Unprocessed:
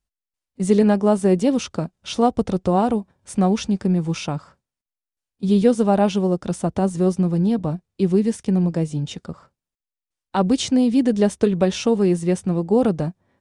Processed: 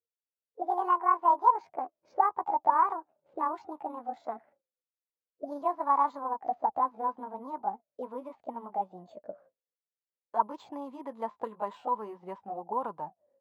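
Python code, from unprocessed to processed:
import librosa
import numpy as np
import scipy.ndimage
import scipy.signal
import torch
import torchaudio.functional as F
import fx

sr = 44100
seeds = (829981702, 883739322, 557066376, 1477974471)

y = fx.pitch_glide(x, sr, semitones=10.5, runs='ending unshifted')
y = np.repeat(scipy.signal.resample_poly(y, 1, 4), 4)[:len(y)]
y = fx.auto_wah(y, sr, base_hz=490.0, top_hz=1000.0, q=16.0, full_db=-16.5, direction='up')
y = F.gain(torch.from_numpy(y), 9.0).numpy()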